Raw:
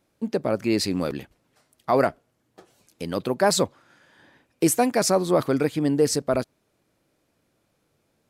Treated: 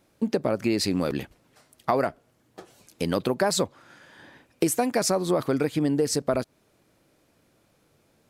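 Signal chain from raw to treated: compression 6:1, threshold -26 dBFS, peak gain reduction 11 dB; trim +5.5 dB

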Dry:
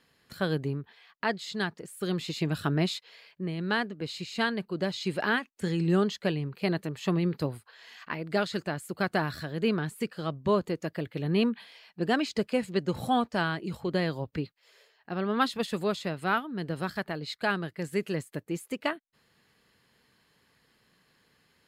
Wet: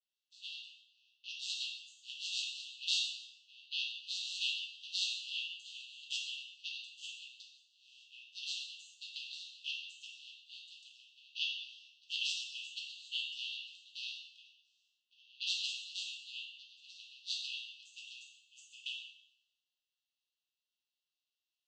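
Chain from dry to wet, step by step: vocoder on a held chord minor triad, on B2; 14.41–15.24 s: compression, threshold -33 dBFS, peak gain reduction 6 dB; brick-wall FIR high-pass 2.6 kHz; plate-style reverb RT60 1.1 s, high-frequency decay 1×, DRR -3 dB; three bands expanded up and down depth 70%; trim +10.5 dB

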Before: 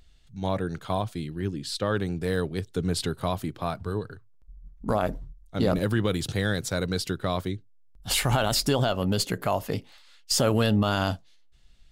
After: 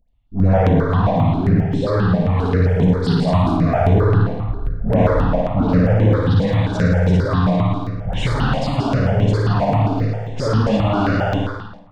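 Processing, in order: flutter echo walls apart 9.5 m, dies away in 1.2 s; waveshaping leveller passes 5; peaking EQ 350 Hz -8 dB 0.24 oct; peak limiter -10.5 dBFS, peak gain reduction 5 dB; reverberation RT60 0.95 s, pre-delay 58 ms, DRR 6.5 dB; gain riding within 5 dB 2 s; tape spacing loss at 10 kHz 40 dB, from 2.29 s at 10 kHz 28 dB, from 3.47 s at 10 kHz 34 dB; phase dispersion highs, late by 89 ms, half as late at 1.3 kHz; stepped phaser 7.5 Hz 360–4600 Hz; trim +1.5 dB

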